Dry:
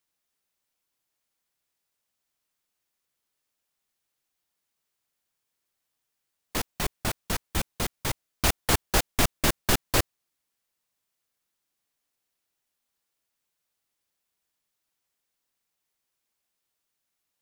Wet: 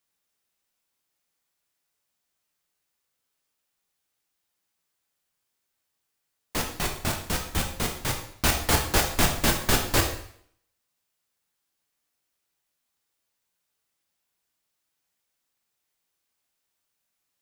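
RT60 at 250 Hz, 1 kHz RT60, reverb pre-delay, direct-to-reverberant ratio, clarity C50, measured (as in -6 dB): 0.65 s, 0.60 s, 5 ms, 1.5 dB, 7.0 dB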